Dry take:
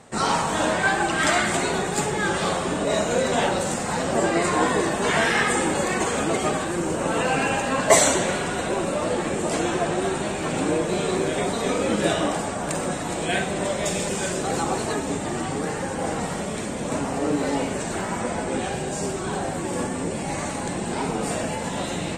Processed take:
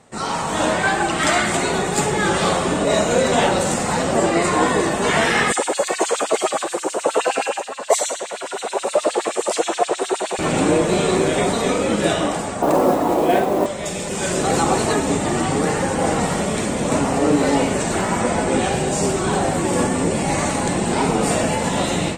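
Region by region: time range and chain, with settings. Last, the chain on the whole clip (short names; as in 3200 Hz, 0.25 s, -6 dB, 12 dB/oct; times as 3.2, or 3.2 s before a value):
5.52–10.39 LFO high-pass sine 9.5 Hz 420–4200 Hz + bell 2000 Hz -6.5 dB 1.9 oct
12.62–13.66 LPF 3200 Hz 6 dB/oct + band shelf 530 Hz +11.5 dB 2.6 oct + modulation noise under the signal 24 dB
whole clip: notch 1600 Hz, Q 24; AGC; gain -3 dB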